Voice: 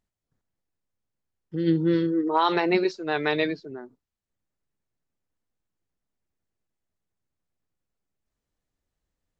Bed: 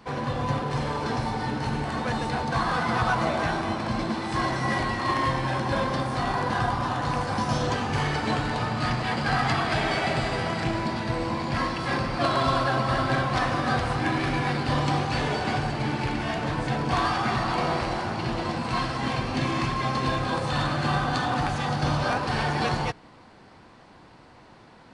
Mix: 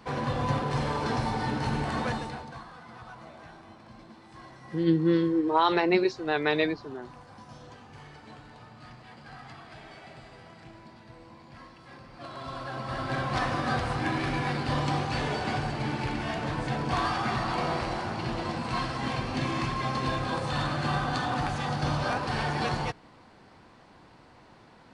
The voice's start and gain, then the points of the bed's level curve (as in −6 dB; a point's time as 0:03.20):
3.20 s, −1.0 dB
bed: 0:02.05 −1 dB
0:02.71 −22 dB
0:12.00 −22 dB
0:13.35 −3.5 dB